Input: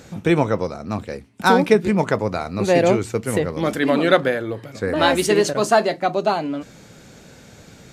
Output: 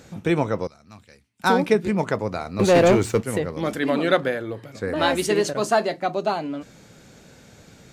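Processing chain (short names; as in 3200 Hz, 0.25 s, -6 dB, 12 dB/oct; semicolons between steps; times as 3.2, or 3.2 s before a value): 0.67–1.44 passive tone stack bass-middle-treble 5-5-5; 2.59–3.23 sample leveller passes 2; gain -4 dB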